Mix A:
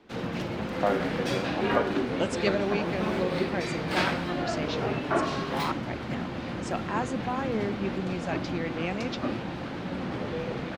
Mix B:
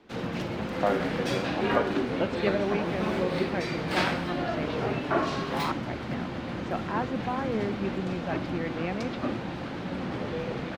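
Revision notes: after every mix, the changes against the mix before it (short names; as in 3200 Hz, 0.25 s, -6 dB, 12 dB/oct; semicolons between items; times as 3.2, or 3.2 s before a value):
speech: add LPF 2300 Hz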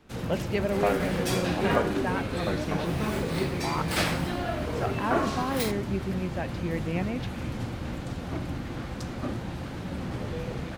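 speech: entry -1.90 s; first sound -3.5 dB; master: remove three-band isolator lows -13 dB, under 160 Hz, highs -16 dB, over 5200 Hz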